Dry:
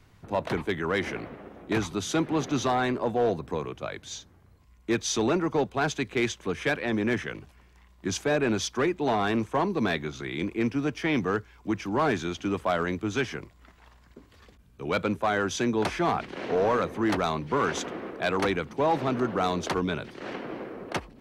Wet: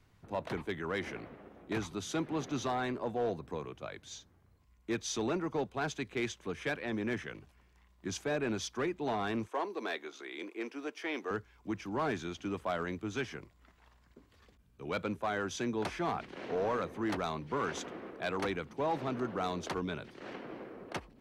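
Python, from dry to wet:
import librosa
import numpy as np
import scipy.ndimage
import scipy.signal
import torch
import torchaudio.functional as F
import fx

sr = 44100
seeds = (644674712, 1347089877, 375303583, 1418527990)

y = fx.highpass(x, sr, hz=330.0, slope=24, at=(9.48, 11.31))
y = F.gain(torch.from_numpy(y), -8.5).numpy()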